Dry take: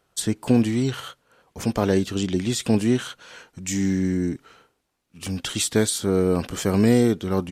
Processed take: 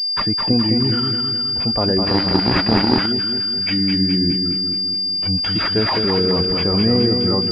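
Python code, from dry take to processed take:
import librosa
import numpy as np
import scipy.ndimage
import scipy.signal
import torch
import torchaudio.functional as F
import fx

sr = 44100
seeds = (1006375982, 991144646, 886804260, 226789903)

p1 = fx.bin_expand(x, sr, power=1.5)
p2 = fx.over_compress(p1, sr, threshold_db=-30.0, ratio=-1.0)
p3 = p1 + (p2 * 10.0 ** (2.0 / 20.0))
p4 = fx.echo_feedback(p3, sr, ms=210, feedback_pct=55, wet_db=-5.0)
p5 = fx.resample_bad(p4, sr, factor=3, down='none', up='zero_stuff', at=(2.06, 3.06))
y = fx.pwm(p5, sr, carrier_hz=4800.0)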